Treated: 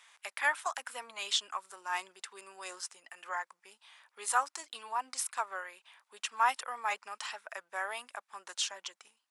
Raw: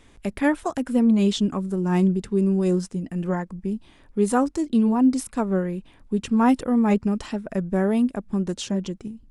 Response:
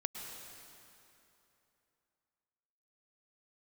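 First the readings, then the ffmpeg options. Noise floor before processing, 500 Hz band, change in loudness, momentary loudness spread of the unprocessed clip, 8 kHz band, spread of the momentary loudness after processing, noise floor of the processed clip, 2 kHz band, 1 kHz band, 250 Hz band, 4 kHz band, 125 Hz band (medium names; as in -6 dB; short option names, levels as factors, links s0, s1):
-54 dBFS, -21.5 dB, -13.0 dB, 11 LU, 0.0 dB, 15 LU, -84 dBFS, 0.0 dB, -4.0 dB, under -40 dB, 0.0 dB, under -40 dB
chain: -af "highpass=f=940:w=0.5412,highpass=f=940:w=1.3066"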